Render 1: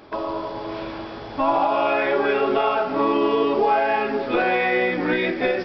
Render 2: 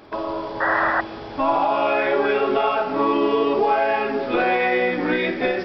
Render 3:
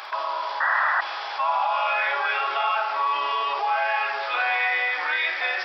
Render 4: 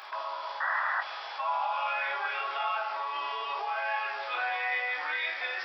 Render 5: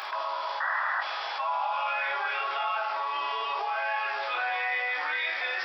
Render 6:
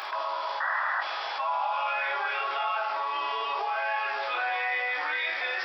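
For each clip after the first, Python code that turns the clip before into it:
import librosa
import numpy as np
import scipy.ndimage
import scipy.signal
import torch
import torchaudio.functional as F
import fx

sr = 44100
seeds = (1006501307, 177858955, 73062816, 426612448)

y1 = fx.room_flutter(x, sr, wall_m=9.0, rt60_s=0.27)
y1 = fx.spec_paint(y1, sr, seeds[0], shape='noise', start_s=0.6, length_s=0.41, low_hz=530.0, high_hz=2000.0, level_db=-20.0)
y2 = scipy.signal.sosfilt(scipy.signal.butter(4, 880.0, 'highpass', fs=sr, output='sos'), y1)
y2 = fx.env_flatten(y2, sr, amount_pct=50)
y2 = y2 * librosa.db_to_amplitude(-1.0)
y3 = fx.doubler(y2, sr, ms=20.0, db=-7.0)
y3 = y3 * librosa.db_to_amplitude(-8.5)
y4 = fx.env_flatten(y3, sr, amount_pct=50)
y5 = fx.peak_eq(y4, sr, hz=290.0, db=3.5, octaves=1.8)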